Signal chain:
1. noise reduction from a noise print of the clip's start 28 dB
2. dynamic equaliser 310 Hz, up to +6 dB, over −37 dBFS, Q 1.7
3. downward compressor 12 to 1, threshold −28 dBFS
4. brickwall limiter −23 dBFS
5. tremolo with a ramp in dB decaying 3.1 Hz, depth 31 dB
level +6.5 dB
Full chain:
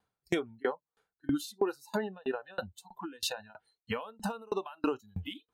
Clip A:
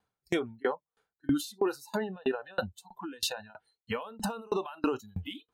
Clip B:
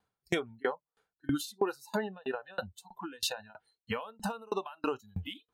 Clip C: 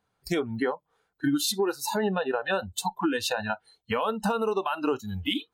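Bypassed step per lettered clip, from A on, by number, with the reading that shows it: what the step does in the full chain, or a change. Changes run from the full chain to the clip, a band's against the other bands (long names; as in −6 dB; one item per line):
3, average gain reduction 8.5 dB
2, 250 Hz band −3.0 dB
5, change in momentary loudness spread −6 LU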